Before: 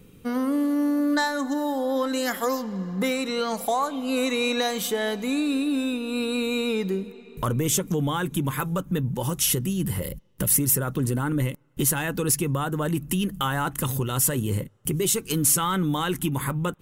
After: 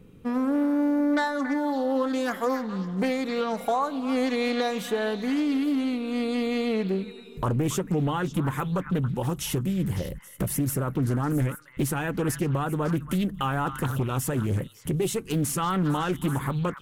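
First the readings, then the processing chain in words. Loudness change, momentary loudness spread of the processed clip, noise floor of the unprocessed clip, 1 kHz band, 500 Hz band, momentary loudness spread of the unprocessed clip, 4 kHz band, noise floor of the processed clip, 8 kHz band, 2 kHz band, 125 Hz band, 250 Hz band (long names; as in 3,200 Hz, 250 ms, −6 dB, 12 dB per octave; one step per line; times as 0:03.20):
−2.0 dB, 4 LU, −49 dBFS, −0.5 dB, −0.5 dB, 6 LU, −6.5 dB, −47 dBFS, −11.0 dB, −3.0 dB, 0.0 dB, 0.0 dB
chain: high-shelf EQ 2,900 Hz −11 dB
echo through a band-pass that steps 277 ms, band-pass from 1,600 Hz, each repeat 1.4 octaves, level −7.5 dB
highs frequency-modulated by the lows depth 0.34 ms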